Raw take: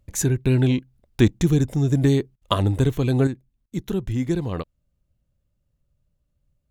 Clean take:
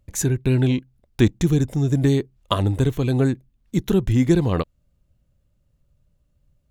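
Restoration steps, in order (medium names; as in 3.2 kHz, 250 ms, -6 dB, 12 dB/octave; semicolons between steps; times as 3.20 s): interpolate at 2.36/3.66 s, 55 ms; trim 0 dB, from 3.27 s +6.5 dB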